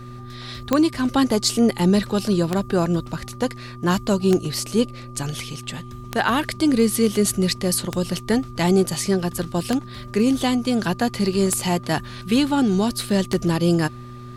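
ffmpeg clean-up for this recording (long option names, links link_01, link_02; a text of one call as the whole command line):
ffmpeg -i in.wav -af "adeclick=threshold=4,bandreject=frequency=122.2:width_type=h:width=4,bandreject=frequency=244.4:width_type=h:width=4,bandreject=frequency=366.6:width_type=h:width=4,bandreject=frequency=1200:width=30" out.wav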